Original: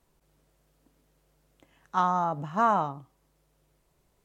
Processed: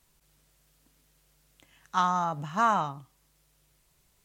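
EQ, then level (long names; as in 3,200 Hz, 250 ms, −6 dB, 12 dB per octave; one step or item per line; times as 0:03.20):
bass and treble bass +9 dB, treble 0 dB
tilt shelving filter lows −8.5 dB, about 1,100 Hz
0.0 dB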